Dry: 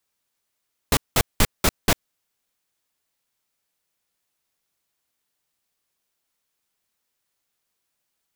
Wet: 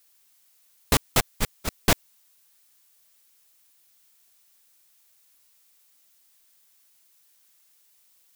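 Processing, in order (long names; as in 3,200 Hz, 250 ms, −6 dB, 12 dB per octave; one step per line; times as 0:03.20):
0:01.20–0:01.81: downward expander −10 dBFS
background noise blue −62 dBFS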